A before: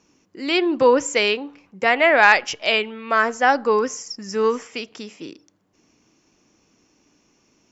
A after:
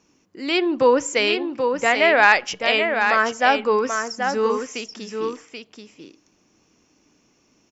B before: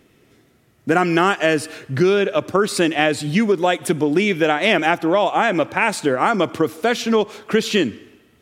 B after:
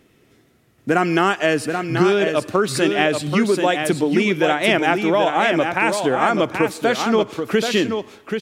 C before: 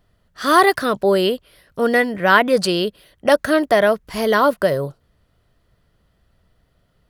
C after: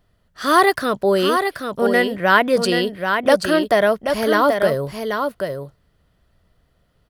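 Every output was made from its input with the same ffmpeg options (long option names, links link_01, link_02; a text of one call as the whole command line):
ffmpeg -i in.wav -af "aecho=1:1:782:0.501,volume=-1dB" out.wav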